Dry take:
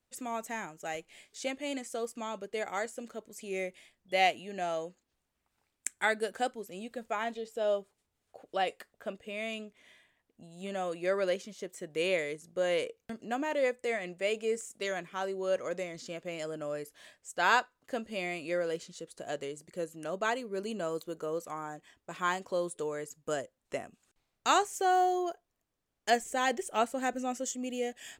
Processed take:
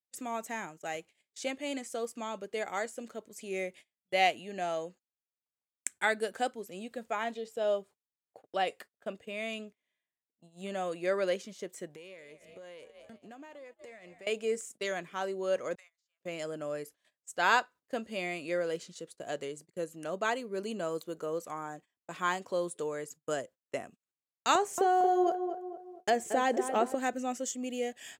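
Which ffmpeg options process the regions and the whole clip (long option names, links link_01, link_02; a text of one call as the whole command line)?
ffmpeg -i in.wav -filter_complex "[0:a]asettb=1/sr,asplit=3[link_01][link_02][link_03];[link_01]atrim=end=11.864[link_04];[link_02]atrim=start=11.86:end=14.27,asetpts=PTS-STARTPTS,afade=type=in:duration=0.004:curve=qsin,afade=type=out:start_time=2.406:duration=0.004:curve=qsin,aeval=exprs='if(lt(val(0),0),0.708*val(0),val(0))':channel_layout=same,asplit=5[link_05][link_06][link_07][link_08][link_09];[link_06]adelay=213,afreqshift=49,volume=-17dB[link_10];[link_07]adelay=426,afreqshift=98,volume=-23.7dB[link_11];[link_08]adelay=639,afreqshift=147,volume=-30.5dB[link_12];[link_09]adelay=852,afreqshift=196,volume=-37.2dB[link_13];[link_05][link_10][link_11][link_12][link_13]amix=inputs=5:normalize=0,atrim=end_sample=106281,acompressor=threshold=-46dB:ratio=8:attack=3.2:release=140:knee=1:detection=peak[link_14];[link_03]atrim=start=14.266[link_15];[link_04][link_14]acrossfade=duration=0.004:curve1=hsin:curve2=qsin[link_16];[link_16][link_15]acrossfade=duration=0.004:curve1=qsin:curve2=hsin,asettb=1/sr,asplit=3[link_17][link_18][link_19];[link_17]atrim=end=15.754[link_20];[link_18]atrim=start=15.75:end=16.21,asetpts=PTS-STARTPTS,afade=type=in:duration=0.004:curve=qsin,afade=type=out:start_time=0.456:duration=0.004:curve=qsin,highpass=frequency=1000:width=0.5412,highpass=frequency=1000:width=1.3066,agate=range=-33dB:threshold=-50dB:ratio=3:release=100:detection=peak,acompressor=threshold=-54dB:ratio=10:attack=3.2:release=140:knee=1:detection=peak[link_21];[link_19]atrim=start=16.206[link_22];[link_20][link_21]acrossfade=duration=0.004:curve1=hsin:curve2=qsin[link_23];[link_23][link_22]acrossfade=duration=0.004:curve1=qsin:curve2=hsin,asettb=1/sr,asplit=3[link_24][link_25][link_26];[link_24]atrim=end=24.554[link_27];[link_25]atrim=start=24.55:end=26.95,asetpts=PTS-STARTPTS,afade=type=in:duration=0.004:curve=qsin,afade=type=out:start_time=2.396:duration=0.004:curve=qsin,equalizer=frequency=400:width=0.35:gain=9.5,acompressor=threshold=-25dB:ratio=3:attack=3.2:release=140:knee=1:detection=peak,asplit=2[link_28][link_29];[link_29]adelay=228,lowpass=frequency=1200:poles=1,volume=-7dB,asplit=2[link_30][link_31];[link_31]adelay=228,lowpass=frequency=1200:poles=1,volume=0.47,asplit=2[link_32][link_33];[link_33]adelay=228,lowpass=frequency=1200:poles=1,volume=0.47,asplit=2[link_34][link_35];[link_35]adelay=228,lowpass=frequency=1200:poles=1,volume=0.47,asplit=2[link_36][link_37];[link_37]adelay=228,lowpass=frequency=1200:poles=1,volume=0.47,asplit=2[link_38][link_39];[link_39]adelay=228,lowpass=frequency=1200:poles=1,volume=0.47[link_40];[link_28][link_30][link_32][link_34][link_36][link_38][link_40]amix=inputs=7:normalize=0,atrim=end_sample=105840[link_41];[link_26]atrim=start=26.946[link_42];[link_27][link_41]acrossfade=duration=0.004:curve1=hsin:curve2=qsin[link_43];[link_43][link_42]acrossfade=duration=0.004:curve1=qsin:curve2=hsin,agate=range=-26dB:threshold=-50dB:ratio=16:detection=peak,highpass=96" out.wav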